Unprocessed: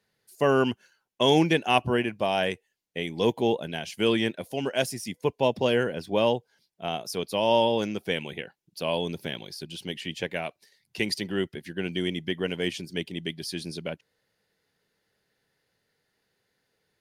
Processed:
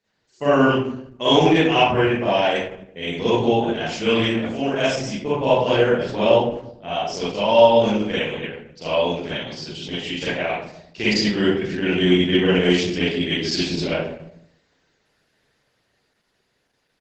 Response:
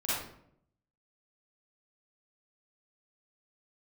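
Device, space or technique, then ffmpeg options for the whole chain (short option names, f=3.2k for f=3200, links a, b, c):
speakerphone in a meeting room: -filter_complex "[1:a]atrim=start_sample=2205[a];[0:a][a]afir=irnorm=-1:irlink=0,asplit=2[b][c];[c]adelay=250,highpass=300,lowpass=3.4k,asoftclip=type=hard:threshold=-10.5dB,volume=-27dB[d];[b][d]amix=inputs=2:normalize=0,dynaudnorm=f=610:g=11:m=9.5dB" -ar 48000 -c:a libopus -b:a 12k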